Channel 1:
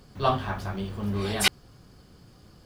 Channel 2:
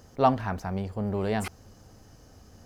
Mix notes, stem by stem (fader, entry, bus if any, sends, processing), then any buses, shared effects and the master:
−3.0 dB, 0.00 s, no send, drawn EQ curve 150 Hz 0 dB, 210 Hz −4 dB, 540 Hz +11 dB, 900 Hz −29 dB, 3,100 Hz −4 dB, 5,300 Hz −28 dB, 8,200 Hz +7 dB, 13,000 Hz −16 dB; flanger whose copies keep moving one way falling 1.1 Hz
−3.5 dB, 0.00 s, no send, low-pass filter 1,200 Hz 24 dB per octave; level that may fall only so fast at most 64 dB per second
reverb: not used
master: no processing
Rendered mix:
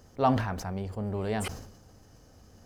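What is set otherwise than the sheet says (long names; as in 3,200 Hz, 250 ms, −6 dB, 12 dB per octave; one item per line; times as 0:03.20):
stem 1 −3.0 dB → −12.0 dB
stem 2: missing low-pass filter 1,200 Hz 24 dB per octave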